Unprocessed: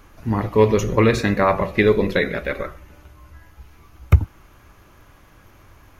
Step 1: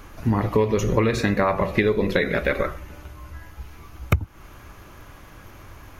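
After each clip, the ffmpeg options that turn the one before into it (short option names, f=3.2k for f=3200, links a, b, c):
-af "acompressor=threshold=-22dB:ratio=8,volume=5.5dB"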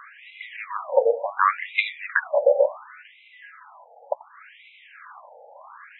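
-af "highshelf=f=7k:g=-11.5,afftfilt=real='re*between(b*sr/1024,620*pow(2900/620,0.5+0.5*sin(2*PI*0.69*pts/sr))/1.41,620*pow(2900/620,0.5+0.5*sin(2*PI*0.69*pts/sr))*1.41)':imag='im*between(b*sr/1024,620*pow(2900/620,0.5+0.5*sin(2*PI*0.69*pts/sr))/1.41,620*pow(2900/620,0.5+0.5*sin(2*PI*0.69*pts/sr))*1.41)':win_size=1024:overlap=0.75,volume=8.5dB"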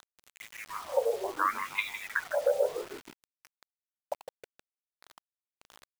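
-filter_complex "[0:a]asplit=5[a][b][c][d][e];[b]adelay=157,afreqshift=-78,volume=-10dB[f];[c]adelay=314,afreqshift=-156,volume=-18dB[g];[d]adelay=471,afreqshift=-234,volume=-25.9dB[h];[e]adelay=628,afreqshift=-312,volume=-33.9dB[i];[a][f][g][h][i]amix=inputs=5:normalize=0,acrusher=bits=5:mix=0:aa=0.000001,volume=-9dB"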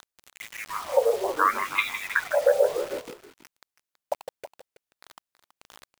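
-af "aecho=1:1:326:0.211,volume=6.5dB"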